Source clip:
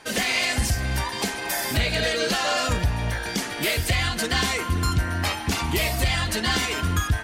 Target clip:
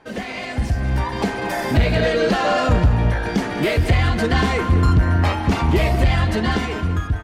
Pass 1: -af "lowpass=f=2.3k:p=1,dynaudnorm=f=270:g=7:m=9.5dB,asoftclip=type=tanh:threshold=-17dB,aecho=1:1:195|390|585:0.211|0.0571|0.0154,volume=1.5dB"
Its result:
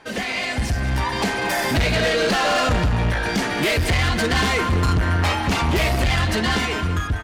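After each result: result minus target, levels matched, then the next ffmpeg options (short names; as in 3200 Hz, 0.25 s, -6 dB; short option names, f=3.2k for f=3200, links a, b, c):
soft clip: distortion +9 dB; 2000 Hz band +4.0 dB
-af "lowpass=f=2.3k:p=1,dynaudnorm=f=270:g=7:m=9.5dB,asoftclip=type=tanh:threshold=-9dB,aecho=1:1:195|390|585:0.211|0.0571|0.0154,volume=1.5dB"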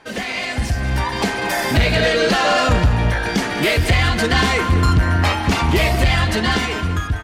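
2000 Hz band +3.5 dB
-af "lowpass=f=790:p=1,dynaudnorm=f=270:g=7:m=9.5dB,asoftclip=type=tanh:threshold=-9dB,aecho=1:1:195|390|585:0.211|0.0571|0.0154,volume=1.5dB"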